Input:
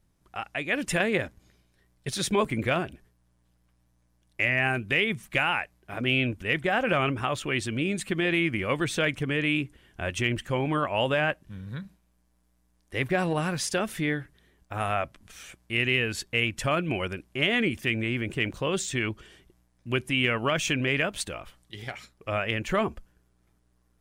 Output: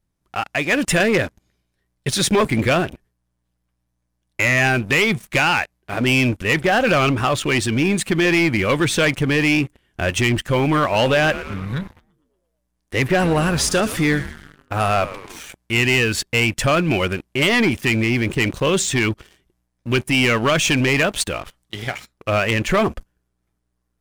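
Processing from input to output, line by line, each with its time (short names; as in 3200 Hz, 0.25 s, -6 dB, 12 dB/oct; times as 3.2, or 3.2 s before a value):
10.81–15.4 frequency-shifting echo 0.114 s, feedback 64%, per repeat -110 Hz, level -16.5 dB
whole clip: sample leveller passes 3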